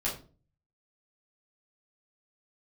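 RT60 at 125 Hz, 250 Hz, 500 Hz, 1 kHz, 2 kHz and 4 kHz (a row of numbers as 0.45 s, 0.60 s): 0.70 s, 0.50 s, 0.45 s, 0.35 s, 0.30 s, 0.25 s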